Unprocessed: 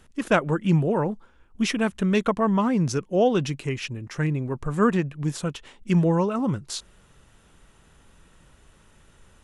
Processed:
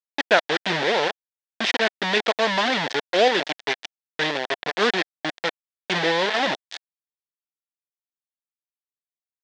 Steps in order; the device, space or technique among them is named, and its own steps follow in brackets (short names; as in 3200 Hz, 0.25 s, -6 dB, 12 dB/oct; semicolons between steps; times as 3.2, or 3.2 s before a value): hand-held game console (bit-crush 4-bit; speaker cabinet 460–5100 Hz, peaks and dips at 720 Hz +3 dB, 1200 Hz -7 dB, 1800 Hz +7 dB, 3500 Hz +6 dB); gain +3 dB